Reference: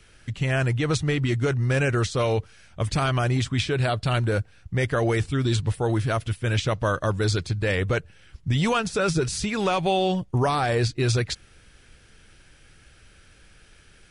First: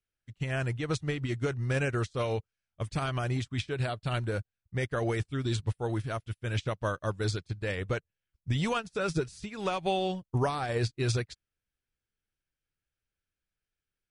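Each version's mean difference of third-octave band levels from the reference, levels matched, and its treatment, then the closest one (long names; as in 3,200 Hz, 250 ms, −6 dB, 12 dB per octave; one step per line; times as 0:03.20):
4.5 dB: expander for the loud parts 2.5 to 1, over −42 dBFS
level −4 dB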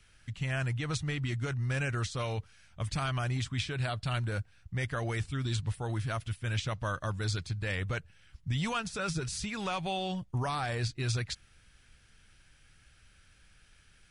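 2.0 dB: parametric band 410 Hz −8.5 dB 1.4 octaves
level −7.5 dB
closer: second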